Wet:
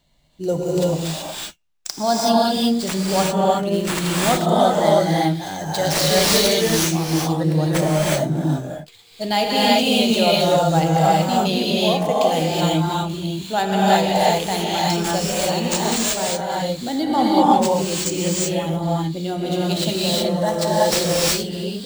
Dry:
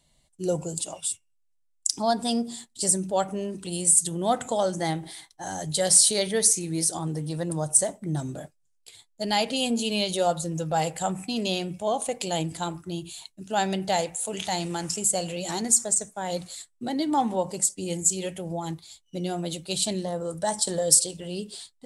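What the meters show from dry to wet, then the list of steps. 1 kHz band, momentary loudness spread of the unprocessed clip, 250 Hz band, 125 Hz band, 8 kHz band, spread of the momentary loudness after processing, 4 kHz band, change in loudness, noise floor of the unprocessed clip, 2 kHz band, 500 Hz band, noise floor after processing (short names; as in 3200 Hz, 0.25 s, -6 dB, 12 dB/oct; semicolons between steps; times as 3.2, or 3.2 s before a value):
+10.5 dB, 15 LU, +10.0 dB, +11.5 dB, -2.5 dB, 9 LU, +9.5 dB, +6.5 dB, -68 dBFS, +11.5 dB, +9.5 dB, -43 dBFS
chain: median filter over 5 samples; non-linear reverb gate 0.4 s rising, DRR -5.5 dB; gain +3.5 dB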